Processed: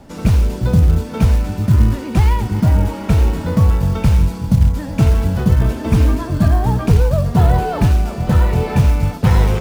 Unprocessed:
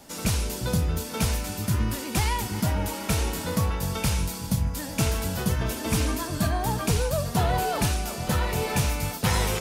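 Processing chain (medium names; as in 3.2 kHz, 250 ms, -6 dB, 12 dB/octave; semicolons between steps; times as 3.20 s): low-pass 1.5 kHz 6 dB/octave; bass shelf 210 Hz +9.5 dB; short-mantissa float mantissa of 4-bit; trim +6 dB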